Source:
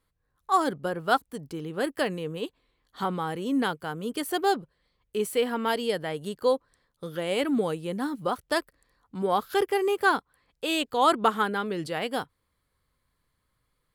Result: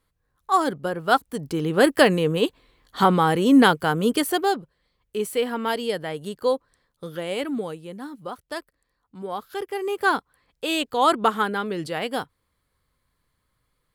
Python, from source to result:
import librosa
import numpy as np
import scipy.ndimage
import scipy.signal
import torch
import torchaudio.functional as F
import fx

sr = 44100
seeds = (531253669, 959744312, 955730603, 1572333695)

y = fx.gain(x, sr, db=fx.line((1.03, 3.0), (1.71, 11.5), (4.08, 11.5), (4.5, 1.5), (7.09, 1.5), (7.97, -6.0), (9.62, -6.0), (10.13, 2.5)))